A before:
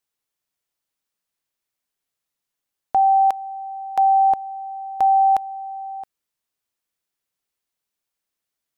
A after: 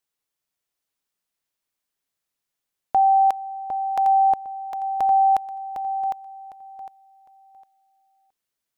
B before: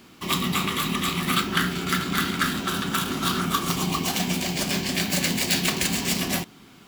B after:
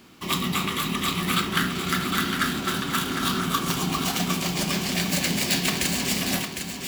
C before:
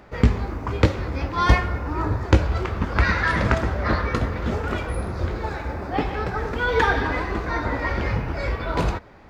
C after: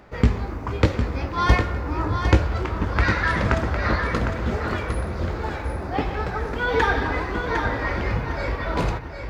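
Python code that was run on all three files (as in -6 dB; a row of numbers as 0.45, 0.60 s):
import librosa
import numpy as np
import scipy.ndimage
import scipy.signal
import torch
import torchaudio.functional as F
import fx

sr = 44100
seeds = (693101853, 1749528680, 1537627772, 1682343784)

y = fx.echo_feedback(x, sr, ms=756, feedback_pct=23, wet_db=-7)
y = F.gain(torch.from_numpy(y), -1.0).numpy()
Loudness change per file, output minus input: -3.0, -0.5, 0.0 LU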